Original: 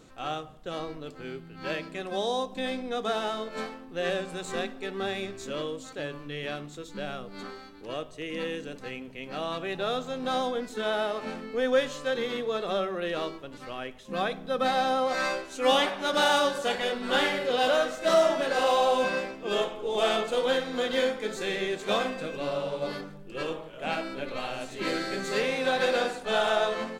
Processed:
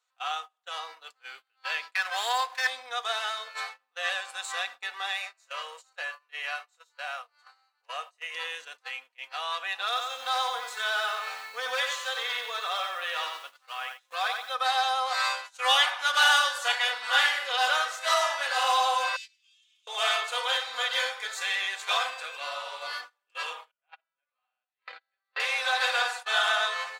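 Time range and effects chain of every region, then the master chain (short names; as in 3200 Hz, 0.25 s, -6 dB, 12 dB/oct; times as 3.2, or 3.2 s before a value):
1.95–2.67 bell 1700 Hz +12 dB 1.2 oct + running maximum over 5 samples
5.17–8.34 resonant low shelf 380 Hz -12.5 dB, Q 1.5 + notch 3400 Hz, Q 6.6 + doubler 32 ms -13 dB
9.86–14.54 overloaded stage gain 21 dB + lo-fi delay 91 ms, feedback 35%, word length 9-bit, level -5 dB
19.16–19.87 Chebyshev high-pass 2600 Hz, order 3 + bell 5900 Hz +11.5 dB 1.7 oct + compressor 16:1, threshold -41 dBFS
23.71–25.4 gate -28 dBFS, range -24 dB + air absorption 310 m
whole clip: gate -38 dBFS, range -24 dB; HPF 900 Hz 24 dB/oct; comb 4.1 ms, depth 50%; gain +4 dB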